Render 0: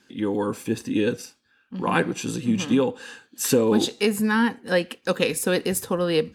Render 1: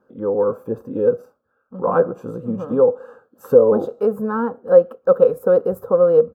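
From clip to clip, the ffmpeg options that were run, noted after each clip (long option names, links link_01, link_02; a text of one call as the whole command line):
ffmpeg -i in.wav -af "firequalizer=gain_entry='entry(190,0);entry(320,-4);entry(510,15);entry(850,1);entry(1300,7);entry(1900,-25);entry(3900,-28);entry(10000,-25);entry(14000,-6)':delay=0.05:min_phase=1,volume=-1.5dB" out.wav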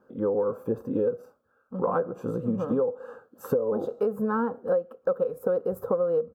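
ffmpeg -i in.wav -af "acompressor=threshold=-22dB:ratio=12" out.wav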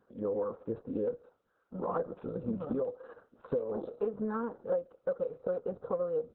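ffmpeg -i in.wav -af "volume=-7dB" -ar 48000 -c:a libopus -b:a 6k out.opus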